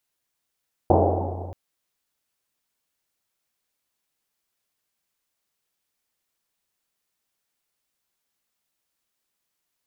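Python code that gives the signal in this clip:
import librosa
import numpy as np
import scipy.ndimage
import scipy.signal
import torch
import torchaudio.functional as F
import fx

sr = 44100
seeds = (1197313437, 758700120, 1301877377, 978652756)

y = fx.risset_drum(sr, seeds[0], length_s=0.63, hz=90.0, decay_s=2.79, noise_hz=550.0, noise_width_hz=560.0, noise_pct=60)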